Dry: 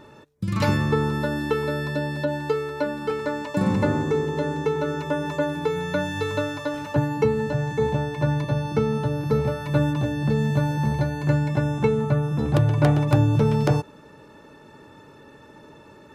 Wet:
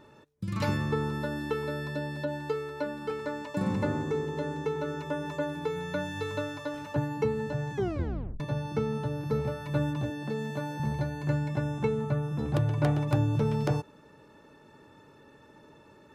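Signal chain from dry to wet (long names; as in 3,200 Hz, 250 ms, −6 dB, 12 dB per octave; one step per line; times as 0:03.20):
0:07.74: tape stop 0.66 s
0:10.10–0:10.80: high-pass filter 220 Hz 12 dB per octave
level −7.5 dB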